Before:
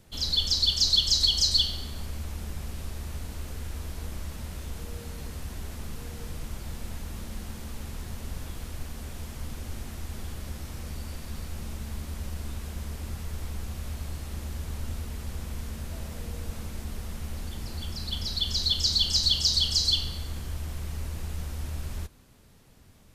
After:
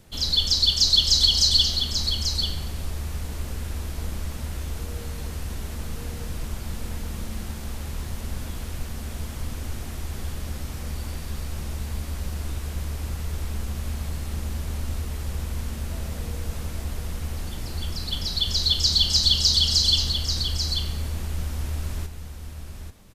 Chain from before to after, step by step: echo 0.838 s -7.5 dB; gain +4 dB

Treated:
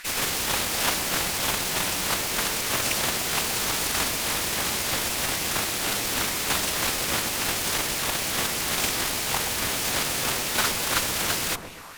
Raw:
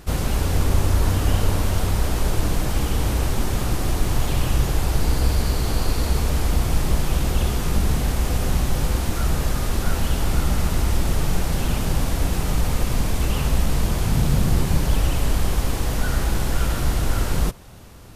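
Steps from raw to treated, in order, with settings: low shelf 340 Hz -9.5 dB; in parallel at -4 dB: sample-rate reducer 1700 Hz; on the sum: LFO high-pass sine 2.1 Hz 990–2500 Hz; added harmonics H 4 -31 dB, 6 -43 dB, 7 -11 dB, 8 -18 dB, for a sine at -14.5 dBFS; on a send: dark delay 0.193 s, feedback 51%, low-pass 750 Hz, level -5 dB; on the sum: time stretch by phase-locked vocoder 0.66×; gain +8 dB

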